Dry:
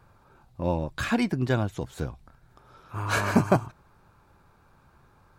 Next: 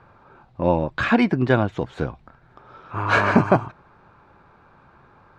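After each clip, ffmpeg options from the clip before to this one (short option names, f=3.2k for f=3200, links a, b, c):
-af "lowpass=2.8k,lowshelf=f=110:g=-11.5,alimiter=level_in=10dB:limit=-1dB:release=50:level=0:latency=1,volume=-1dB"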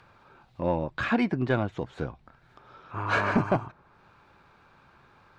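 -filter_complex "[0:a]acrossover=split=2200[a][b];[b]acompressor=mode=upward:threshold=-50dB:ratio=2.5[c];[a][c]amix=inputs=2:normalize=0,asoftclip=type=tanh:threshold=-5.5dB,volume=-6.5dB"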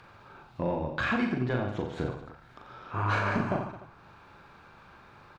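-filter_complex "[0:a]acompressor=threshold=-30dB:ratio=6,asplit=2[a][b];[b]aecho=0:1:40|88|145.6|214.7|297.7:0.631|0.398|0.251|0.158|0.1[c];[a][c]amix=inputs=2:normalize=0,volume=2.5dB"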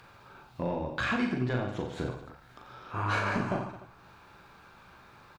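-filter_complex "[0:a]crystalizer=i=1.5:c=0,asplit=2[a][b];[b]adelay=16,volume=-11dB[c];[a][c]amix=inputs=2:normalize=0,volume=-2dB"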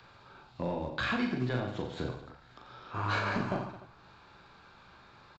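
-filter_complex "[0:a]acrossover=split=160|770|4600[a][b][c][d];[a]acrusher=bits=5:mode=log:mix=0:aa=0.000001[e];[e][b][c][d]amix=inputs=4:normalize=0,aresample=16000,aresample=44100,aexciter=amount=1.5:drive=3.8:freq=3.5k,volume=-2dB"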